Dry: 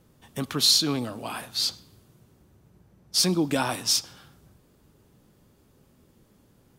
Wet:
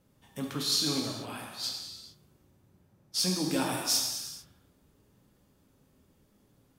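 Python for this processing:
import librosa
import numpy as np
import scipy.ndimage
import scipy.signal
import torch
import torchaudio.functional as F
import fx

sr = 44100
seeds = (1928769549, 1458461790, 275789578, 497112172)

y = fx.transient(x, sr, attack_db=-11, sustain_db=1, at=(0.58, 1.64))
y = fx.high_shelf(y, sr, hz=9300.0, db=9.5, at=(3.38, 4.03))
y = fx.rev_gated(y, sr, seeds[0], gate_ms=470, shape='falling', drr_db=-0.5)
y = y * librosa.db_to_amplitude(-8.5)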